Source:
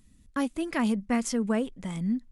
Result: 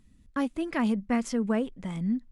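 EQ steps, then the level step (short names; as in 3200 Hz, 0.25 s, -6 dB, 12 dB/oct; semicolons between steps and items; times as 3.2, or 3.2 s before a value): high shelf 5600 Hz -10.5 dB; 0.0 dB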